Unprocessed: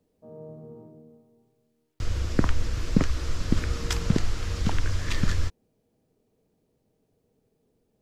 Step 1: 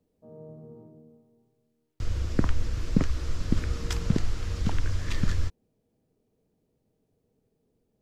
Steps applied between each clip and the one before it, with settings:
low-shelf EQ 420 Hz +4 dB
level −5 dB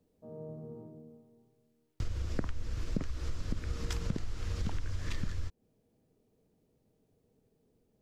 downward compressor 6 to 1, threshold −31 dBFS, peak gain reduction 15 dB
level +1 dB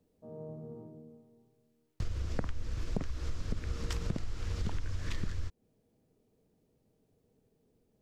highs frequency-modulated by the lows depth 0.59 ms

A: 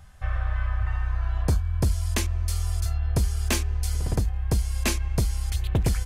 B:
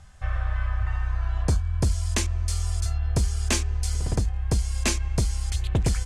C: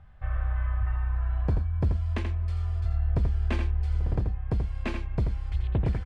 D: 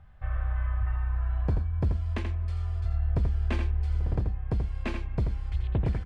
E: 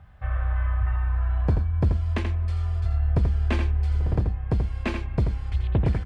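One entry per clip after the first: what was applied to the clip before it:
low-pass with resonance 8,000 Hz, resonance Q 1.5
high-frequency loss of the air 480 metres; single-tap delay 83 ms −6.5 dB; level −3 dB
on a send at −23 dB: high-frequency loss of the air 380 metres + convolution reverb RT60 1.7 s, pre-delay 118 ms; on the sum: level −1 dB
high-pass filter 46 Hz; level +5.5 dB

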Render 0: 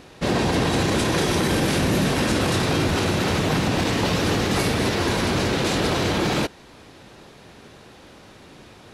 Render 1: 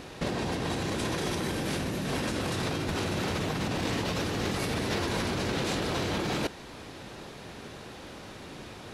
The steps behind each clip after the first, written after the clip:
compressor whose output falls as the input rises −27 dBFS, ratio −1
level −3.5 dB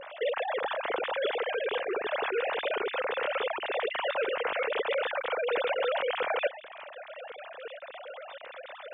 three sine waves on the formant tracks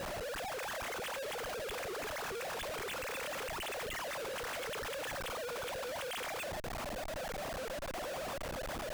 comparator with hysteresis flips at −43.5 dBFS
level −8 dB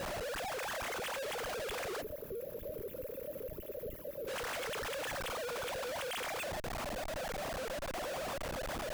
gain on a spectral selection 0:02.02–0:04.28, 640–11,000 Hz −22 dB
level +1 dB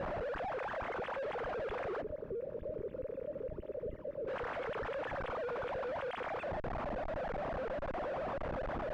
low-pass filter 1,500 Hz 12 dB per octave
level +2 dB

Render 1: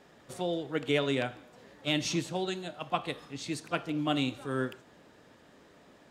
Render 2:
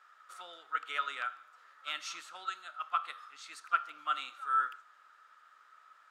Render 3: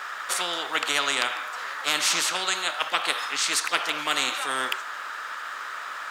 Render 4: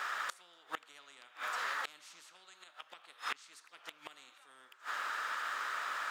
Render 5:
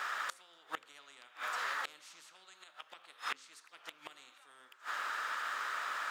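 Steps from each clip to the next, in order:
high-pass with resonance 1,300 Hz, resonance Q 16; level −9 dB
every bin compressed towards the loudest bin 4 to 1; level +8.5 dB
gate with flip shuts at −19 dBFS, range −29 dB; level −3.5 dB
hum removal 88.56 Hz, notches 6

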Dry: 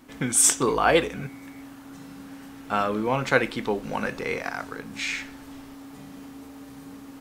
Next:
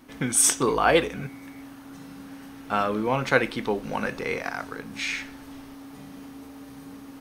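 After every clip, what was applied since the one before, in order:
notch filter 7,400 Hz, Q 8.7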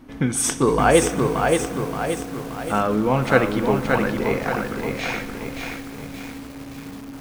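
spectral tilt −2 dB per octave
convolution reverb RT60 4.9 s, pre-delay 40 ms, DRR 12.5 dB
feedback echo at a low word length 575 ms, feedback 55%, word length 7 bits, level −3.5 dB
level +2.5 dB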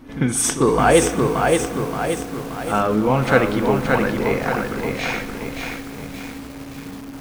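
in parallel at −7 dB: soft clipping −11.5 dBFS, distortion −15 dB
on the sum: echo ahead of the sound 46 ms −13.5 dB
level −1 dB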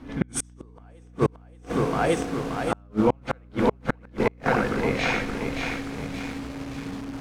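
gate with flip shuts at −9 dBFS, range −42 dB
mains hum 60 Hz, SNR 22 dB
high-frequency loss of the air 52 metres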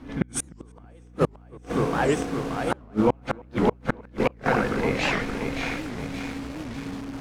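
feedback echo with a low-pass in the loop 313 ms, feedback 41%, low-pass 1,800 Hz, level −24 dB
wow of a warped record 78 rpm, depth 250 cents

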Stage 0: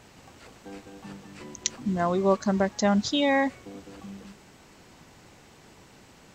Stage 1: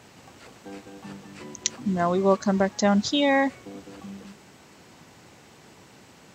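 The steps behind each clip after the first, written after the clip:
high-pass filter 85 Hz
level +2 dB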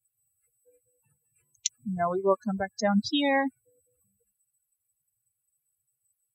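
spectral dynamics exaggerated over time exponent 3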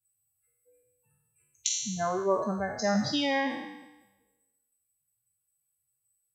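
peak hold with a decay on every bin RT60 1.04 s
level −4 dB

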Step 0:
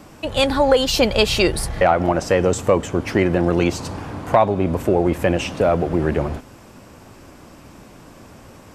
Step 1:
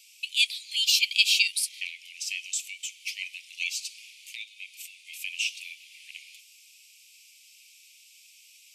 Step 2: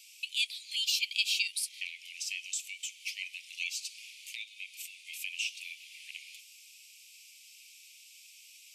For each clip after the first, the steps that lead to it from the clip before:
Butterworth high-pass 2,300 Hz 96 dB per octave
downward compressor 1.5 to 1, threshold −41 dBFS, peak gain reduction 9.5 dB

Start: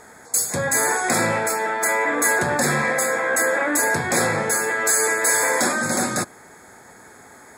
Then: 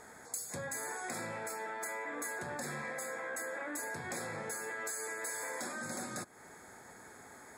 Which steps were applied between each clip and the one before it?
downward compressor 5 to 1, threshold −31 dBFS, peak gain reduction 14.5 dB
level −8 dB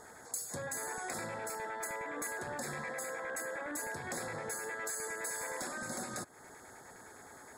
auto-filter notch square 9.7 Hz 200–2,400 Hz
level +1 dB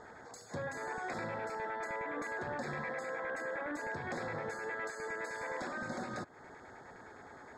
high-frequency loss of the air 190 metres
level +2.5 dB

